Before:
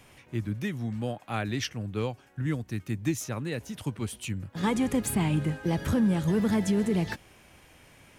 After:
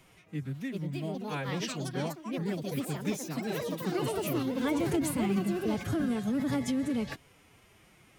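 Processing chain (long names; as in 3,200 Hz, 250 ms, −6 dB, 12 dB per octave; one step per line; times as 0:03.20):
delay with pitch and tempo change per echo 475 ms, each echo +5 semitones, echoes 3
phase-vocoder pitch shift with formants kept +4.5 semitones
level −4.5 dB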